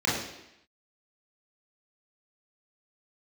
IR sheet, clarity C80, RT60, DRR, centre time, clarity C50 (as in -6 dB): 5.5 dB, 0.85 s, -7.5 dB, 57 ms, 2.0 dB